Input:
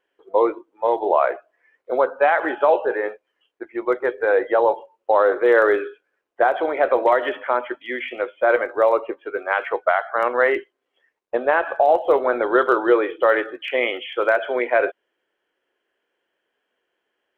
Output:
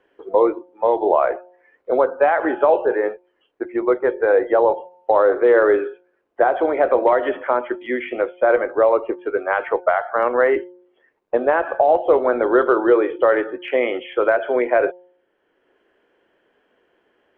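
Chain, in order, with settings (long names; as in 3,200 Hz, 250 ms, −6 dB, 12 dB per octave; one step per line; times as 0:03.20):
low-pass filter 1,800 Hz 6 dB per octave
low-shelf EQ 390 Hz +7.5 dB
hum removal 179.1 Hz, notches 5
multiband upward and downward compressor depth 40%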